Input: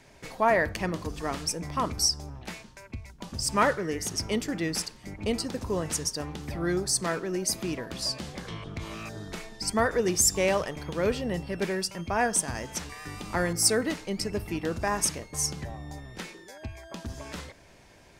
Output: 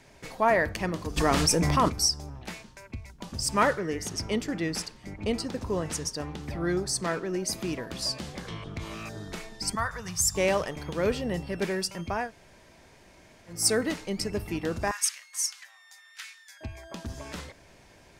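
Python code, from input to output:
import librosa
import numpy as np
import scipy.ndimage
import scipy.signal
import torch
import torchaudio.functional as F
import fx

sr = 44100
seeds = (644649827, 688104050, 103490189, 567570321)

y = fx.env_flatten(x, sr, amount_pct=70, at=(1.16, 1.88), fade=0.02)
y = fx.high_shelf(y, sr, hz=7100.0, db=-7.0, at=(3.79, 7.53))
y = fx.curve_eq(y, sr, hz=(150.0, 330.0, 1100.0, 2400.0, 4800.0), db=(0, -26, 1, -7, -3), at=(9.75, 10.35))
y = fx.highpass(y, sr, hz=1400.0, slope=24, at=(14.91, 16.61))
y = fx.edit(y, sr, fx.room_tone_fill(start_s=12.21, length_s=1.37, crossfade_s=0.24), tone=tone)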